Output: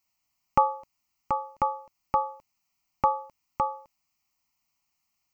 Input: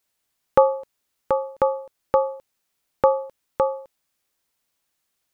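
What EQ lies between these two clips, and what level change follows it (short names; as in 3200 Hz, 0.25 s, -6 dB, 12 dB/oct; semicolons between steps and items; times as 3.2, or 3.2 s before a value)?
fixed phaser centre 2400 Hz, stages 8; 0.0 dB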